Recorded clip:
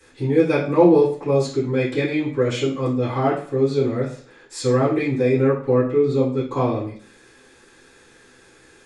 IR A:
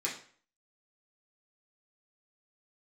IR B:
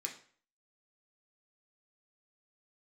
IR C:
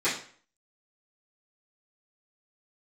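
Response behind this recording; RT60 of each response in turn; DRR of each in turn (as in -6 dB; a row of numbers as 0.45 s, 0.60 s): C; 0.50 s, 0.50 s, 0.50 s; -6.0 dB, 0.0 dB, -15.5 dB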